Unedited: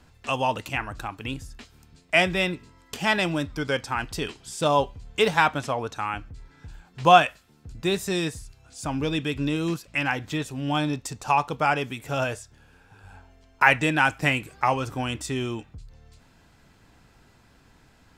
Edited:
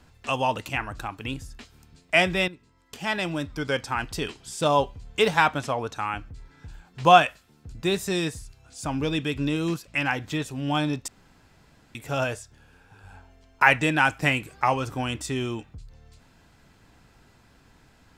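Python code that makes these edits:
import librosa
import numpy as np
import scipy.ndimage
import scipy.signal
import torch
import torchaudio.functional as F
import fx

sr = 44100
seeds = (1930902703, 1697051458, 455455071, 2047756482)

y = fx.edit(x, sr, fx.fade_in_from(start_s=2.48, length_s=1.32, floor_db=-14.0),
    fx.room_tone_fill(start_s=11.08, length_s=0.87), tone=tone)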